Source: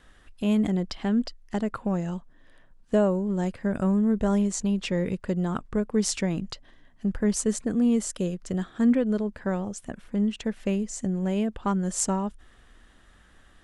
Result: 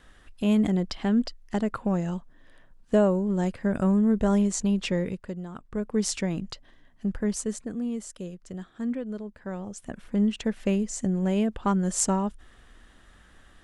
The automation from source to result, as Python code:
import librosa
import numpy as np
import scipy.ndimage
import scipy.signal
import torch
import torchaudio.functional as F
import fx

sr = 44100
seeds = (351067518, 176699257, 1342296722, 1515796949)

y = fx.gain(x, sr, db=fx.line((4.91, 1.0), (5.52, -12.0), (5.87, -1.5), (7.1, -1.5), (7.91, -9.0), (9.4, -9.0), (10.05, 1.5)))